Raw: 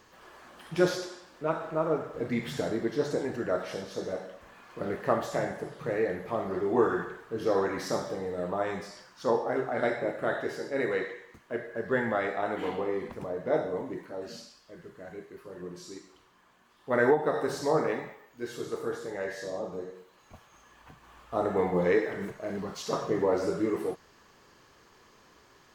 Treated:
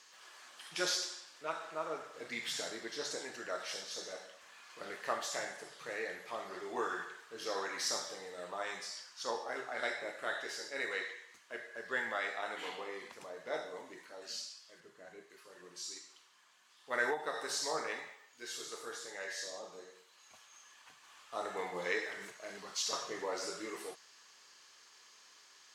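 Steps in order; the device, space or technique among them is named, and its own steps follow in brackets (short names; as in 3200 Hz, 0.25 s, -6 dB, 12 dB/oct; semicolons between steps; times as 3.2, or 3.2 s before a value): piezo pickup straight into a mixer (LPF 6900 Hz 12 dB/oct; differentiator); 14.8–15.3 tilt shelf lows +5.5 dB; gain +9.5 dB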